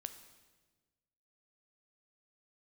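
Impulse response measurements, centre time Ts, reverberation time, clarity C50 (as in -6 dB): 12 ms, 1.3 s, 11.0 dB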